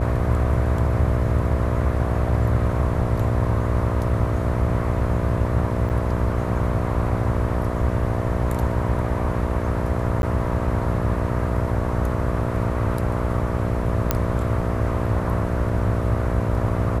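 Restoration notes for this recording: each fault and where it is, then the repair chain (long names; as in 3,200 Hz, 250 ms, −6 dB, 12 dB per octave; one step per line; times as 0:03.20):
mains buzz 60 Hz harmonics 11 −26 dBFS
0:05.89–0:05.90: drop-out 8.5 ms
0:10.22–0:10.23: drop-out 11 ms
0:14.11: click −4 dBFS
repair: click removal
hum removal 60 Hz, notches 11
repair the gap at 0:05.89, 8.5 ms
repair the gap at 0:10.22, 11 ms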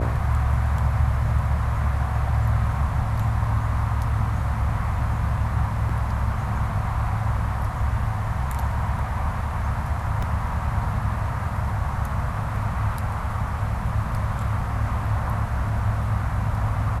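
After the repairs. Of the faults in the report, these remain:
none of them is left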